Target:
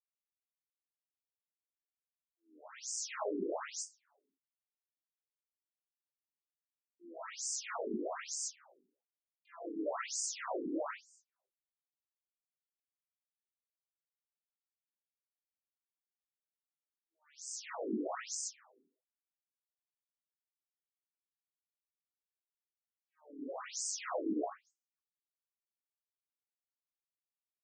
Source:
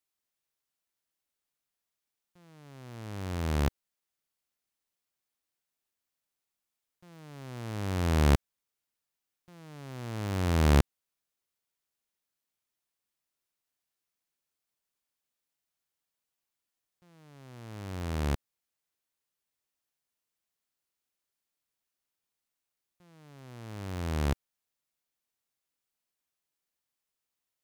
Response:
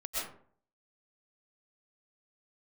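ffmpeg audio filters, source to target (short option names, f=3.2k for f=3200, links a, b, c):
-filter_complex "[0:a]aeval=exprs='0.211*(cos(1*acos(clip(val(0)/0.211,-1,1)))-cos(1*PI/2))+0.0531*(cos(2*acos(clip(val(0)/0.211,-1,1)))-cos(2*PI/2))+0.0133*(cos(3*acos(clip(val(0)/0.211,-1,1)))-cos(3*PI/2))+0.0531*(cos(4*acos(clip(val(0)/0.211,-1,1)))-cos(4*PI/2))':c=same,asplit=2[a][b];[b]asoftclip=type=tanh:threshold=-28.5dB,volume=-6dB[c];[a][c]amix=inputs=2:normalize=0,agate=range=-58dB:threshold=-52dB:ratio=16:detection=peak,dynaudnorm=f=240:g=21:m=3dB,volume=14dB,asoftclip=hard,volume=-14dB,asplit=4[d][e][f][g];[e]asetrate=22050,aresample=44100,atempo=2,volume=-2dB[h];[f]asetrate=37084,aresample=44100,atempo=1.18921,volume=-10dB[i];[g]asetrate=88200,aresample=44100,atempo=0.5,volume=-1dB[j];[d][h][i][j]amix=inputs=4:normalize=0,areverse,acompressor=threshold=-30dB:ratio=16,areverse,highshelf=f=5k:t=q:w=3:g=9[k];[1:a]atrim=start_sample=2205[l];[k][l]afir=irnorm=-1:irlink=0,afftfilt=real='re*between(b*sr/1024,300*pow(6600/300,0.5+0.5*sin(2*PI*1.1*pts/sr))/1.41,300*pow(6600/300,0.5+0.5*sin(2*PI*1.1*pts/sr))*1.41)':imag='im*between(b*sr/1024,300*pow(6600/300,0.5+0.5*sin(2*PI*1.1*pts/sr))/1.41,300*pow(6600/300,0.5+0.5*sin(2*PI*1.1*pts/sr))*1.41)':win_size=1024:overlap=0.75,volume=5.5dB"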